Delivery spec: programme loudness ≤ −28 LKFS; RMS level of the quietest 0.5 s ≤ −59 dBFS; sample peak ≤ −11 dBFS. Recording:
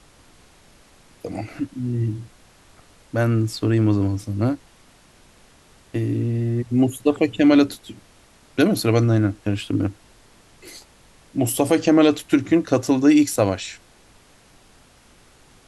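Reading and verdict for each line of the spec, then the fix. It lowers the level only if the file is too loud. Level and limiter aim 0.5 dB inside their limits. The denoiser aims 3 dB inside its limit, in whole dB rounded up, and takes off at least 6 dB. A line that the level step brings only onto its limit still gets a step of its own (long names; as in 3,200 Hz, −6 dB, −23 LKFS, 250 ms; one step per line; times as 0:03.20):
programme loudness −20.5 LKFS: out of spec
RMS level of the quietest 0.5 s −52 dBFS: out of spec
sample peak −5.0 dBFS: out of spec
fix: level −8 dB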